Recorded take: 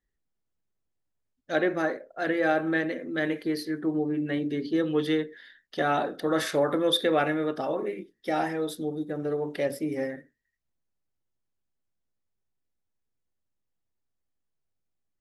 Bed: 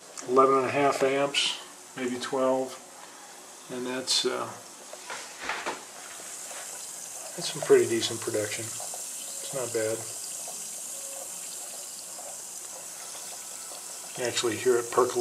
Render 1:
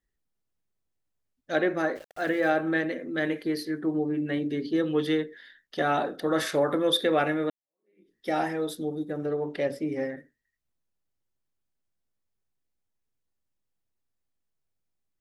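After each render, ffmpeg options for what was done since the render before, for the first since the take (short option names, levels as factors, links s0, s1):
-filter_complex "[0:a]asplit=3[s0][s1][s2];[s0]afade=t=out:st=1.95:d=0.02[s3];[s1]aeval=exprs='val(0)*gte(abs(val(0)),0.00631)':c=same,afade=t=in:st=1.95:d=0.02,afade=t=out:st=2.49:d=0.02[s4];[s2]afade=t=in:st=2.49:d=0.02[s5];[s3][s4][s5]amix=inputs=3:normalize=0,asettb=1/sr,asplit=3[s6][s7][s8];[s6]atrim=end=9.264[s9];[s7]atrim=start=9.26:end=10.17,asetpts=PTS-STARTPTS,afade=t=in:d=0.004:c=qsin,afade=t=out:st=0.906:d=0.004:c=qsin,adynamicsmooth=sensitivity=2.5:basefreq=7000[s10];[s8]atrim=start=10.166[s11];[s9][s10]acrossfade=d=0.004:c1=hsin:c2=qsin[s12];[s12][s11]acrossfade=d=0.004:c1=qsin:c2=hsin,asplit=2[s13][s14];[s13]atrim=end=7.5,asetpts=PTS-STARTPTS,afade=t=out:st=7.496:d=0.004:c=hsin[s15];[s14]atrim=start=7.5,asetpts=PTS-STARTPTS,afade=t=in:d=0.64:c=exp[s16];[s15][s16]concat=n=2:v=0:a=1"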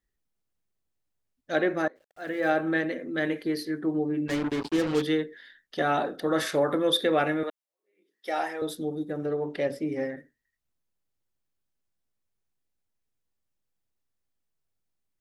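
-filter_complex "[0:a]asettb=1/sr,asplit=3[s0][s1][s2];[s0]atrim=end=4.284[s3];[s1]atrim=start=4.28:end=5.02,asetpts=PTS-STARTPTS,afade=t=in:d=0.004:c=qsin,afade=t=out:st=0.736:d=0.004:c=qsin,acrusher=bits=4:mix=0:aa=0.5[s4];[s2]atrim=start=5.016[s5];[s3][s4]acrossfade=d=0.004:c1=hsin:c2=qsin[s6];[s6][s5]acrossfade=d=0.004:c1=qsin:c2=hsin,asettb=1/sr,asplit=3[s7][s8][s9];[s7]atrim=end=7.434[s10];[s8]atrim=start=7.43:end=8.62,asetpts=PTS-STARTPTS,afade=t=in:d=0.004:c=qsin,afade=t=out:st=1.186:d=0.004:c=qsin,highpass=510[s11];[s9]atrim=start=8.616[s12];[s10][s11]acrossfade=d=0.004:c1=hsin:c2=qsin[s13];[s13][s12]acrossfade=d=0.004:c1=qsin:c2=hsin,asplit=2[s14][s15];[s14]atrim=end=1.88,asetpts=PTS-STARTPTS,afade=t=out:st=1.876:d=0.004:c=hsin:silence=0.0707946[s16];[s15]atrim=start=1.88,asetpts=PTS-STARTPTS,afade=t=in:d=0.62:c=qua:silence=0.0707946[s17];[s16][s17]concat=n=2:v=0:a=1"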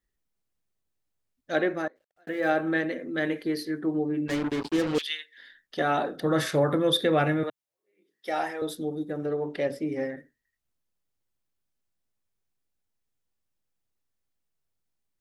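-filter_complex "[0:a]asettb=1/sr,asplit=3[s0][s1][s2];[s0]atrim=end=4.984[s3];[s1]atrim=start=4.98:end=5.38,asetpts=PTS-STARTPTS,afade=t=in:d=0.004:c=qsin,afade=t=out:st=0.396:d=0.004:c=qsin,highpass=f=2700:t=q:w=2.3[s4];[s2]atrim=start=5.376[s5];[s3][s4]acrossfade=d=0.004:c1=hsin:c2=qsin[s6];[s6][s5]acrossfade=d=0.004:c1=qsin:c2=hsin,asettb=1/sr,asplit=3[s7][s8][s9];[s7]atrim=end=6.154[s10];[s8]atrim=start=6.15:end=8.51,asetpts=PTS-STARTPTS,afade=t=in:d=0.004:c=qsin,afade=t=out:st=2.356:d=0.004:c=qsin,equalizer=f=130:w=1.5:g=11.5[s11];[s9]atrim=start=8.506[s12];[s10][s11]acrossfade=d=0.004:c1=hsin:c2=qsin[s13];[s13][s12]acrossfade=d=0.004:c1=qsin:c2=hsin,asplit=2[s14][s15];[s14]atrim=end=2.27,asetpts=PTS-STARTPTS,afade=t=out:st=1.61:d=0.66[s16];[s15]atrim=start=2.27,asetpts=PTS-STARTPTS,afade=t=in:d=0.004:c=hsin[s17];[s16][s17]concat=n=2:v=0:a=1"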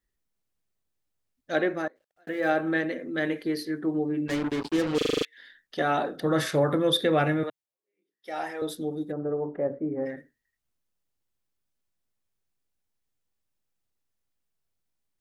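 -filter_complex "[0:a]asplit=3[s0][s1][s2];[s0]afade=t=out:st=9.11:d=0.02[s3];[s1]lowpass=f=1300:w=0.5412,lowpass=f=1300:w=1.3066,afade=t=in:st=9.11:d=0.02,afade=t=out:st=10.05:d=0.02[s4];[s2]afade=t=in:st=10.05:d=0.02[s5];[s3][s4][s5]amix=inputs=3:normalize=0,asplit=10[s6][s7][s8][s9][s10][s11][s12][s13][s14][s15];[s6]atrim=end=5.012[s16];[s7]atrim=start=4.968:end=5.012[s17];[s8]atrim=start=4.968:end=5.012[s18];[s9]atrim=start=4.968:end=5.012[s19];[s10]atrim=start=4.968:end=5.012[s20];[s11]atrim=start=4.968:end=5.012[s21];[s12]atrim=start=4.968:end=5.012[s22];[s13]atrim=start=5.248:end=7.82,asetpts=PTS-STARTPTS,afade=t=out:st=2.162:d=0.41:silence=0.281838[s23];[s14]atrim=start=7.82:end=8.19,asetpts=PTS-STARTPTS,volume=0.282[s24];[s15]atrim=start=8.19,asetpts=PTS-STARTPTS,afade=t=in:d=0.41:silence=0.281838[s25];[s16][s17]acrossfade=d=0.004:c1=hsin:c2=hsin[s26];[s26][s18]acrossfade=d=0.004:c1=hsin:c2=hsin[s27];[s27][s19]acrossfade=d=0.004:c1=hsin:c2=hsin[s28];[s28][s20]acrossfade=d=0.004:c1=hsin:c2=hsin[s29];[s29][s21]acrossfade=d=0.004:c1=hsin:c2=hsin[s30];[s30][s22]acrossfade=d=0.004:c1=hsin:c2=hsin[s31];[s23][s24][s25]concat=n=3:v=0:a=1[s32];[s31][s32]acrossfade=d=0.004:c1=hsin:c2=hsin"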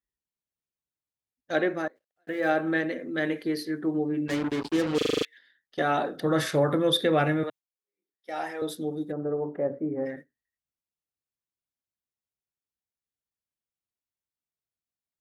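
-af "agate=range=0.282:threshold=0.00708:ratio=16:detection=peak,highpass=41"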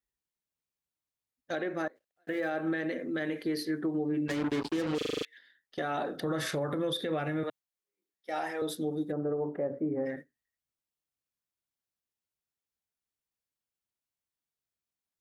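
-af "acompressor=threshold=0.0501:ratio=6,alimiter=limit=0.0668:level=0:latency=1:release=68"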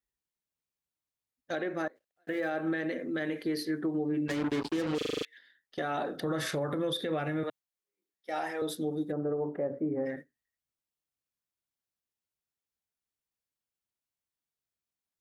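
-af anull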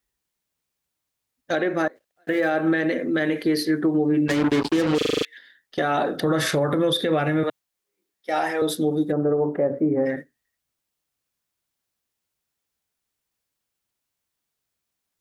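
-af "volume=3.35"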